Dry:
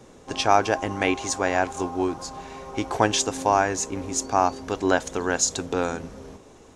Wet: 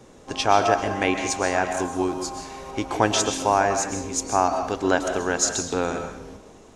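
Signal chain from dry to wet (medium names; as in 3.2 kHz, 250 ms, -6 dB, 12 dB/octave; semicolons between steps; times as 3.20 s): 1.71–2.71 s: treble shelf 6.6 kHz +8 dB; on a send: reverberation RT60 0.65 s, pre-delay 90 ms, DRR 6 dB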